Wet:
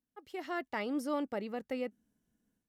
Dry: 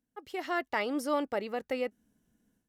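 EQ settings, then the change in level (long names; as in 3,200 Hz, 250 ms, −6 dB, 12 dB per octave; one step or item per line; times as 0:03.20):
dynamic equaliser 200 Hz, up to +8 dB, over −49 dBFS, Q 1
−6.5 dB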